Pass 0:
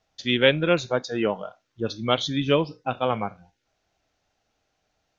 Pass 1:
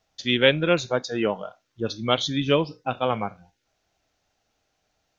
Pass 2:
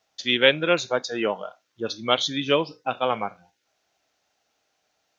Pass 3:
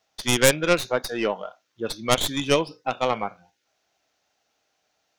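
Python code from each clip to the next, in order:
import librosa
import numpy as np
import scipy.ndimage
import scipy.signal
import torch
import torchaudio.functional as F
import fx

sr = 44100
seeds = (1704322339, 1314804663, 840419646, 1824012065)

y1 = fx.high_shelf(x, sr, hz=5300.0, db=4.5)
y2 = fx.highpass(y1, sr, hz=410.0, slope=6)
y2 = F.gain(torch.from_numpy(y2), 2.0).numpy()
y3 = fx.tracing_dist(y2, sr, depth_ms=0.23)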